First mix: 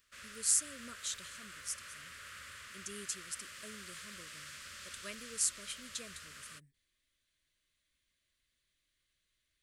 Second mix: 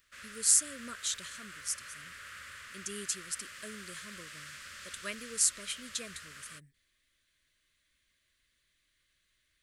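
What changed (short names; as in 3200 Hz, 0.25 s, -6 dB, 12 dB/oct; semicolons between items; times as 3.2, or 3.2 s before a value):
speech +5.0 dB; master: add bell 1700 Hz +4 dB 1 oct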